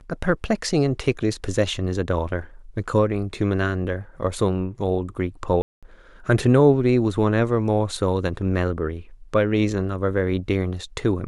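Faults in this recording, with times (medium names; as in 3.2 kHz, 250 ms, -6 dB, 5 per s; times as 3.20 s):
5.62–5.83 s: dropout 206 ms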